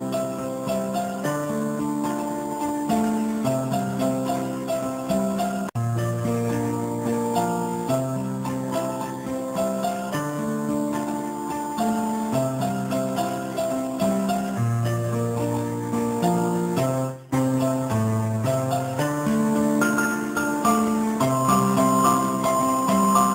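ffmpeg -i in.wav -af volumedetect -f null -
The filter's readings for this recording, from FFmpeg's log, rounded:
mean_volume: -23.4 dB
max_volume: -5.6 dB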